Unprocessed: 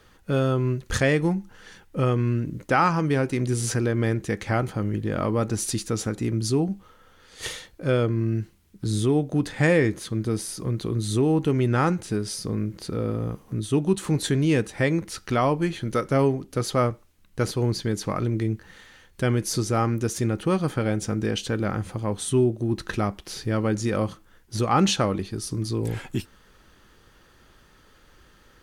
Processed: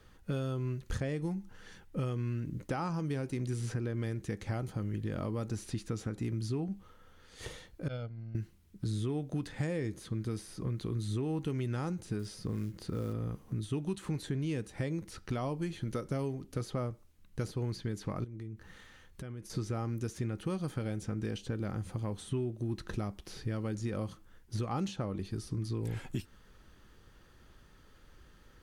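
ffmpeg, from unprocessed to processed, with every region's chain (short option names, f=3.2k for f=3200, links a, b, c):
-filter_complex "[0:a]asettb=1/sr,asplit=3[a][b][c];[a]atrim=end=7.884[d];[b]atrim=start=7.88:end=8.35,asetpts=PTS-STARTPTS,afade=t=in:d=0.004:c=qsin,afade=t=out:st=0.466:d=0.004:c=qsin,agate=range=-33dB:threshold=-12dB:ratio=3:release=100:detection=peak,lowpass=f=4.3k:t=q:w=3,aecho=1:1:1.4:0.69,atrim=end_sample=20727[e];[c]atrim=start=8.346[f];[d][e]acrossfade=d=0.004:c1=hsin:c2=qsin[g];[g][f]acrossfade=d=0.004:c1=qsin:c2=hsin,asettb=1/sr,asplit=3[h][i][j];[h]atrim=end=12.194[k];[i]atrim=start=12.19:end=13.13,asetpts=PTS-STARTPTS,afade=t=in:d=0.004:c=qsin,afade=t=out:st=0.936:d=0.004:c=qsin,bandreject=f=2.3k:w=23,acrusher=bits=7:mode=log:mix=0:aa=0.000001[l];[j]atrim=start=13.126[m];[k][l]acrossfade=d=0.004:c1=hsin:c2=qsin[n];[n][m]acrossfade=d=0.004:c1=qsin:c2=hsin,asettb=1/sr,asplit=3[o][p][q];[o]atrim=end=18.244[r];[p]atrim=start=18.24:end=19.5,asetpts=PTS-STARTPTS,afade=t=in:d=0.004:c=qsin,afade=t=out:st=1.256:d=0.004:c=qsin,acompressor=threshold=-37dB:ratio=6:attack=3.2:release=140:knee=1:detection=peak,equalizer=f=1.2k:t=o:w=0.3:g=3.5,bandreject=f=4.5k:w=30[s];[q]atrim=start=19.496[t];[r][s]acrossfade=d=0.004:c1=hsin:c2=qsin[u];[u][t]acrossfade=d=0.004:c1=qsin:c2=hsin,lowshelf=f=240:g=7,acrossover=split=1100|3400[v][w][x];[v]acompressor=threshold=-25dB:ratio=4[y];[w]acompressor=threshold=-44dB:ratio=4[z];[x]acompressor=threshold=-45dB:ratio=4[aa];[y][z][aa]amix=inputs=3:normalize=0,volume=-7.5dB"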